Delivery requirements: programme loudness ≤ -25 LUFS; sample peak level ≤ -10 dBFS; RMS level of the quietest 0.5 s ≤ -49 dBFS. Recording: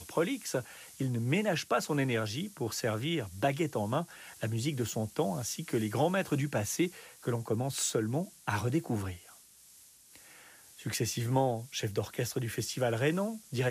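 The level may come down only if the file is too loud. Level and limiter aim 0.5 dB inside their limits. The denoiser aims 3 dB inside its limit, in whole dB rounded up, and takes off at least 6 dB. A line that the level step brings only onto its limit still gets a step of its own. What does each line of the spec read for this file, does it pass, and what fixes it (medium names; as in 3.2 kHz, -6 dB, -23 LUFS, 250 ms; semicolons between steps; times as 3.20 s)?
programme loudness -33.0 LUFS: pass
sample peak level -16.0 dBFS: pass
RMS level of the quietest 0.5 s -58 dBFS: pass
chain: none needed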